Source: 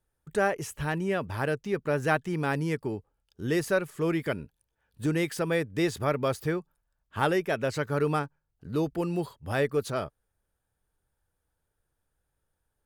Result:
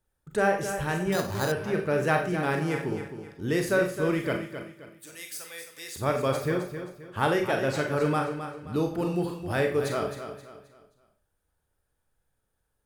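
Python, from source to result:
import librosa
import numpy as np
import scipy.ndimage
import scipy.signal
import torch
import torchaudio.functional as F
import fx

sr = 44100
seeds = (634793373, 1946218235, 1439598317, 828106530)

p1 = fx.differentiator(x, sr, at=(4.36, 5.96))
p2 = p1 + fx.echo_feedback(p1, sr, ms=264, feedback_pct=35, wet_db=-9.5, dry=0)
p3 = fx.rev_schroeder(p2, sr, rt60_s=0.38, comb_ms=30, drr_db=3.5)
y = fx.resample_bad(p3, sr, factor=8, down='filtered', up='hold', at=(1.12, 1.52))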